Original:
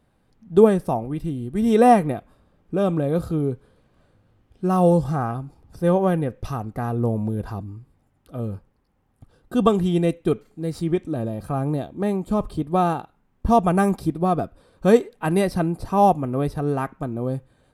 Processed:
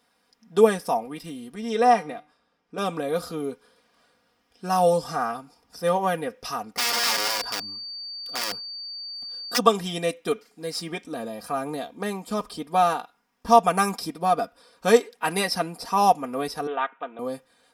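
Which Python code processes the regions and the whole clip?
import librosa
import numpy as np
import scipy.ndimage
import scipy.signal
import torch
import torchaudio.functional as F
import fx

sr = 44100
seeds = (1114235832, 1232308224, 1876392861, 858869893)

y = fx.chain(x, sr, fx.air_absorb(metres=61.0),
    fx.comb_fb(f0_hz=150.0, decay_s=0.39, harmonics='all', damping=0.0, mix_pct=50), at=(1.55, 2.78))
y = fx.overflow_wrap(y, sr, gain_db=23.5, at=(6.77, 9.57), fade=0.02)
y = fx.dmg_tone(y, sr, hz=4600.0, level_db=-42.0, at=(6.77, 9.57), fade=0.02)
y = fx.chain(y, sr, fx.highpass(hz=430.0, slope=12),
    fx.resample_bad(factor=6, down='none', up='filtered'), at=(16.67, 17.19))
y = fx.highpass(y, sr, hz=1400.0, slope=6)
y = fx.peak_eq(y, sr, hz=5200.0, db=12.0, octaves=0.23)
y = y + 0.65 * np.pad(y, (int(4.2 * sr / 1000.0), 0))[:len(y)]
y = F.gain(torch.from_numpy(y), 5.0).numpy()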